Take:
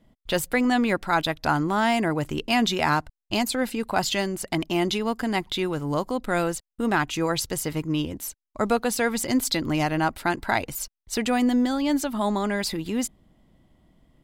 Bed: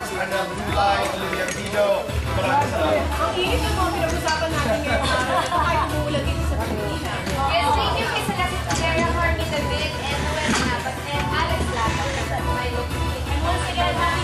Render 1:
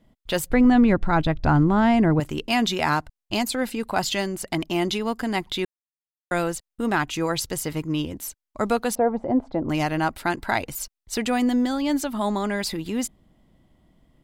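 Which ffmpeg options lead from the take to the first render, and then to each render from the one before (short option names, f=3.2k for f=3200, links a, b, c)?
-filter_complex "[0:a]asettb=1/sr,asplit=3[a][b][c];[a]atrim=end=0.504[d];[b]atrim=start=0.5:end=2.2,asetpts=PTS-STARTPTS,afade=t=in:d=0.004:c=qsin,afade=t=out:st=1.696:d=0.004:c=qsin,aemphasis=mode=reproduction:type=riaa[e];[c]atrim=start=2.196[f];[d][e]acrossfade=d=0.004:c1=hsin:c2=qsin[g];[g][f]acrossfade=d=0.004:c1=qsin:c2=hsin,asettb=1/sr,asplit=3[h][i][j];[h]atrim=end=8.954[k];[i]atrim=start=8.95:end=9.69,asetpts=PTS-STARTPTS,afade=t=in:d=0.004:c=qsin,afade=t=out:st=0.736:d=0.004:c=qsin,lowpass=f=720:t=q:w=2.6[l];[j]atrim=start=9.686[m];[k][l]acrossfade=d=0.004:c1=hsin:c2=qsin[n];[n][m]acrossfade=d=0.004:c1=qsin:c2=hsin,asplit=3[o][p][q];[o]atrim=end=5.65,asetpts=PTS-STARTPTS,afade=t=out:st=5.646:d=0.004:c=hsin[r];[p]atrim=start=5.65:end=6.31,asetpts=PTS-STARTPTS,volume=0[s];[q]atrim=start=6.31,asetpts=PTS-STARTPTS,afade=t=in:d=0.004:c=hsin[t];[r][s][t]concat=n=3:v=0:a=1"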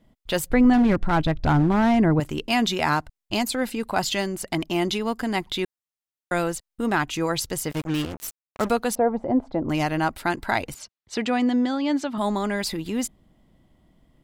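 -filter_complex "[0:a]asettb=1/sr,asplit=3[a][b][c];[a]atrim=end=0.734[d];[b]atrim=start=0.73:end=1.98,asetpts=PTS-STARTPTS,afade=t=in:d=0.004:c=qsin,afade=t=out:st=1.246:d=0.004:c=qsin,asoftclip=type=hard:threshold=-14.5dB[e];[c]atrim=start=1.976[f];[d][e]acrossfade=d=0.004:c1=hsin:c2=qsin[g];[g][f]acrossfade=d=0.004:c1=qsin:c2=hsin,asettb=1/sr,asplit=3[h][i][j];[h]atrim=end=7.714[k];[i]atrim=start=7.71:end=8.71,asetpts=PTS-STARTPTS,afade=t=in:d=0.004:c=qsin,afade=t=out:st=0.996:d=0.004:c=qsin,acrusher=bits=4:mix=0:aa=0.5[l];[j]atrim=start=8.706[m];[k][l]acrossfade=d=0.004:c1=hsin:c2=qsin[n];[n][m]acrossfade=d=0.004:c1=qsin:c2=hsin,asettb=1/sr,asplit=3[o][p][q];[o]atrim=end=10.744[r];[p]atrim=start=10.74:end=12.18,asetpts=PTS-STARTPTS,afade=t=in:d=0.004:c=qsin,afade=t=out:st=1.436:d=0.004:c=qsin,highpass=110,lowpass=4.9k[s];[q]atrim=start=12.176[t];[r][s]acrossfade=d=0.004:c1=hsin:c2=qsin[u];[u][t]acrossfade=d=0.004:c1=qsin:c2=hsin"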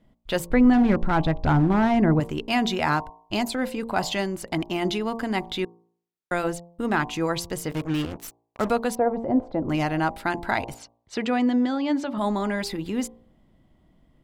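-af "highshelf=f=4.1k:g=-7,bandreject=f=57.38:t=h:w=4,bandreject=f=114.76:t=h:w=4,bandreject=f=172.14:t=h:w=4,bandreject=f=229.52:t=h:w=4,bandreject=f=286.9:t=h:w=4,bandreject=f=344.28:t=h:w=4,bandreject=f=401.66:t=h:w=4,bandreject=f=459.04:t=h:w=4,bandreject=f=516.42:t=h:w=4,bandreject=f=573.8:t=h:w=4,bandreject=f=631.18:t=h:w=4,bandreject=f=688.56:t=h:w=4,bandreject=f=745.94:t=h:w=4,bandreject=f=803.32:t=h:w=4,bandreject=f=860.7:t=h:w=4,bandreject=f=918.08:t=h:w=4,bandreject=f=975.46:t=h:w=4,bandreject=f=1.03284k:t=h:w=4,bandreject=f=1.09022k:t=h:w=4,bandreject=f=1.1476k:t=h:w=4"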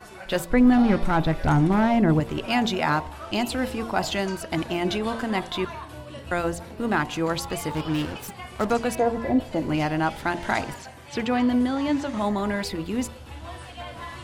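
-filter_complex "[1:a]volume=-16.5dB[a];[0:a][a]amix=inputs=2:normalize=0"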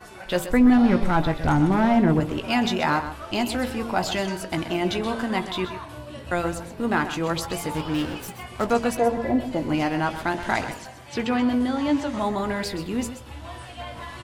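-filter_complex "[0:a]asplit=2[a][b];[b]adelay=17,volume=-10.5dB[c];[a][c]amix=inputs=2:normalize=0,asplit=2[d][e];[e]aecho=0:1:128:0.266[f];[d][f]amix=inputs=2:normalize=0"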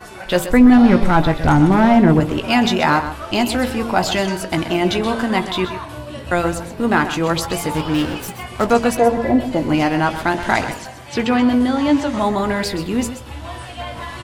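-af "volume=7dB,alimiter=limit=-2dB:level=0:latency=1"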